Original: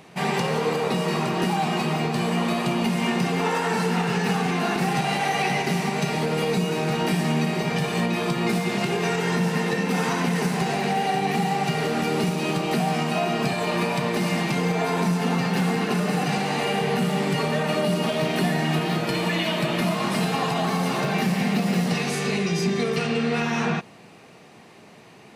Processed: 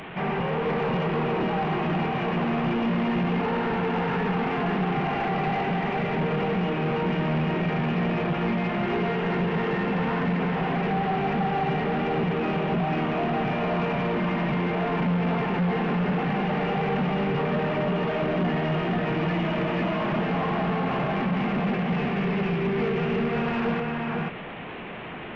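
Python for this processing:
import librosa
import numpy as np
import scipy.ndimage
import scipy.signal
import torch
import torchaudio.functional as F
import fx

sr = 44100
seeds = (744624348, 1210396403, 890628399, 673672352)

y = fx.delta_mod(x, sr, bps=16000, step_db=-32.5)
y = y + 10.0 ** (-3.0 / 20.0) * np.pad(y, (int(489 * sr / 1000.0), 0))[:len(y)]
y = 10.0 ** (-20.0 / 20.0) * np.tanh(y / 10.0 ** (-20.0 / 20.0))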